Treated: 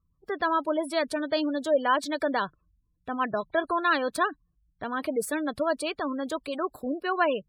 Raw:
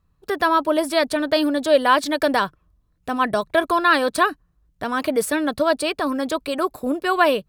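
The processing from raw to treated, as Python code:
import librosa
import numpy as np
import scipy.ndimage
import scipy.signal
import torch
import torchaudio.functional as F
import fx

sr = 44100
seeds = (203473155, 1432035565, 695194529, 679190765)

y = fx.spec_gate(x, sr, threshold_db=-25, keep='strong')
y = y * librosa.db_to_amplitude(-7.5)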